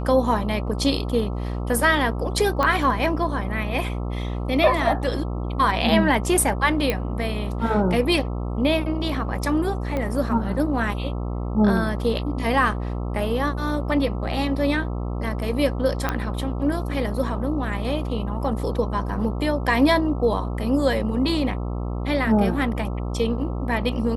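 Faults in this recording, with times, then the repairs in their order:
buzz 60 Hz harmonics 22 -27 dBFS
2.63 s: pop -10 dBFS
6.90 s: pop -9 dBFS
9.97 s: pop -15 dBFS
16.09 s: pop -9 dBFS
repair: de-click; de-hum 60 Hz, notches 22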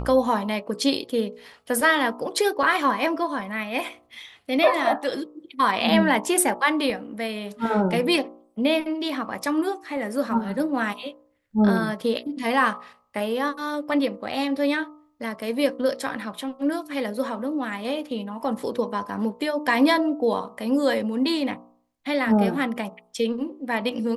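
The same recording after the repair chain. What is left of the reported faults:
2.63 s: pop
9.97 s: pop

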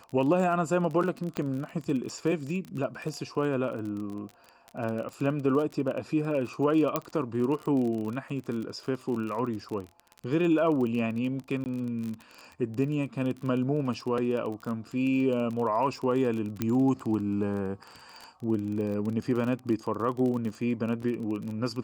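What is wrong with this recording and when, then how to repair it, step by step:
crackle 30 per s -33 dBFS
1.37 s: pop -17 dBFS
6.96 s: pop -11 dBFS
11.64–11.66 s: dropout 19 ms
16.62 s: pop -14 dBFS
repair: de-click; interpolate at 11.64 s, 19 ms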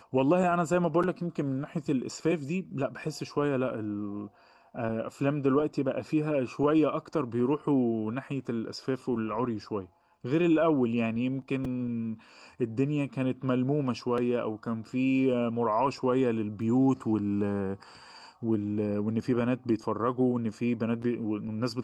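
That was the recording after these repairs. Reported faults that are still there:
16.62 s: pop

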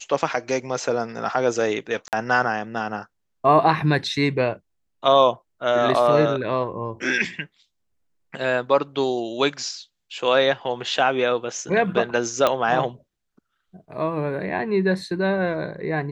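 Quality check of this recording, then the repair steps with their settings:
2.08–2.13 s: dropout 48 ms
12.47 s: pop -6 dBFS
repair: de-click; interpolate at 2.08 s, 48 ms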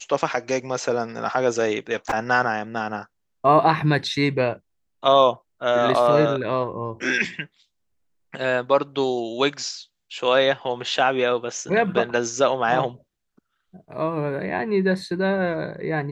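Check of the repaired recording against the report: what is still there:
nothing left

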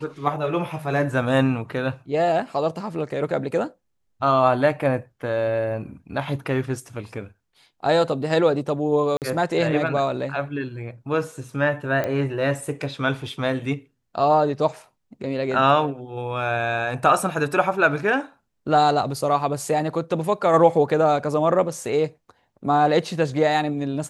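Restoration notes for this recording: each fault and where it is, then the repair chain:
9.17–9.22 s: dropout 48 ms
12.04 s: pop -13 dBFS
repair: de-click; interpolate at 9.17 s, 48 ms

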